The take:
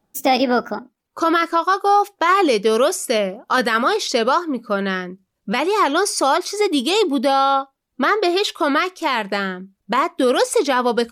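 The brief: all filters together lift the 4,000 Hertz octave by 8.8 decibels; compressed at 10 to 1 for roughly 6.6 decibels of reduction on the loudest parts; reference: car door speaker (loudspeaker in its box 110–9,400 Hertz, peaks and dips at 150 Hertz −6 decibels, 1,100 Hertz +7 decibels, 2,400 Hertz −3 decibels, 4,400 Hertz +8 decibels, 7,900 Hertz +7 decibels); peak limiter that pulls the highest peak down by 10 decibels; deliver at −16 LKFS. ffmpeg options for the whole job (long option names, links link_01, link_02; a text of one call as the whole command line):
ffmpeg -i in.wav -af "equalizer=frequency=4000:width_type=o:gain=6.5,acompressor=threshold=-18dB:ratio=10,alimiter=limit=-17.5dB:level=0:latency=1,highpass=110,equalizer=frequency=150:width_type=q:width=4:gain=-6,equalizer=frequency=1100:width_type=q:width=4:gain=7,equalizer=frequency=2400:width_type=q:width=4:gain=-3,equalizer=frequency=4400:width_type=q:width=4:gain=8,equalizer=frequency=7900:width_type=q:width=4:gain=7,lowpass=frequency=9400:width=0.5412,lowpass=frequency=9400:width=1.3066,volume=8.5dB" out.wav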